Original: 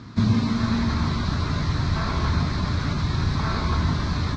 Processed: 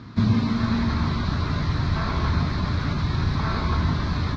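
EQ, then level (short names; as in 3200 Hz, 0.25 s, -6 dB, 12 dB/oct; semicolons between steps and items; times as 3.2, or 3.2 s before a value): LPF 4800 Hz 12 dB/oct; 0.0 dB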